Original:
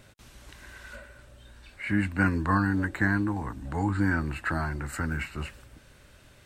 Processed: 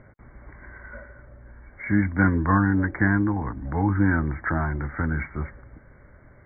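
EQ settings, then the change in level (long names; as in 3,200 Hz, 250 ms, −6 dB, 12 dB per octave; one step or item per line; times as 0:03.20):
linear-phase brick-wall low-pass 2,300 Hz
high-frequency loss of the air 390 metres
+5.5 dB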